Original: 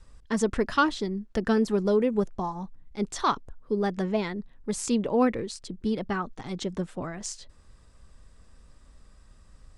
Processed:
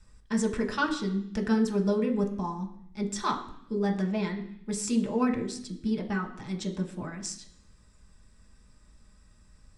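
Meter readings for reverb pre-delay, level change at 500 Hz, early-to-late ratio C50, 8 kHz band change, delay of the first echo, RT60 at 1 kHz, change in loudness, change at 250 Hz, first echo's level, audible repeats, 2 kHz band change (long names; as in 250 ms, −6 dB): 3 ms, −4.5 dB, 11.0 dB, −0.5 dB, no echo audible, 0.70 s, −2.0 dB, 0.0 dB, no echo audible, no echo audible, −1.5 dB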